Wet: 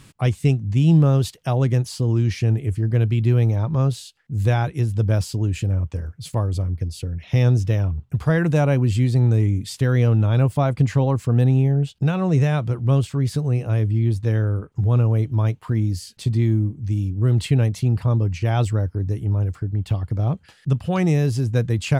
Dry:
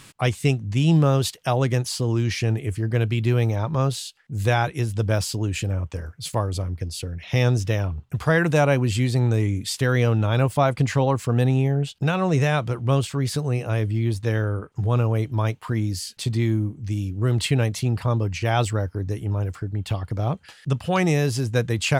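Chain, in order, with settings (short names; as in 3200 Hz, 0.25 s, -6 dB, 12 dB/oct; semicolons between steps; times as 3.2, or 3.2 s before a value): low shelf 370 Hz +10.5 dB; gain -5.5 dB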